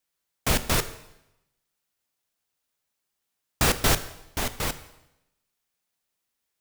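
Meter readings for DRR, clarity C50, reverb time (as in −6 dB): 11.0 dB, 14.0 dB, 0.85 s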